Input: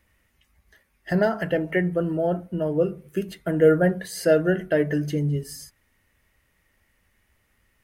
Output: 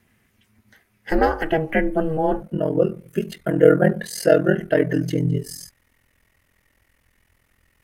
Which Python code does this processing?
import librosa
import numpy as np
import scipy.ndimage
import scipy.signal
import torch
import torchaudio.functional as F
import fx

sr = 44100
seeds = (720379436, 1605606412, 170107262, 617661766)

y = fx.ring_mod(x, sr, carrier_hz=fx.steps((0.0, 160.0), (2.42, 21.0)))
y = F.gain(torch.from_numpy(y), 6.0).numpy()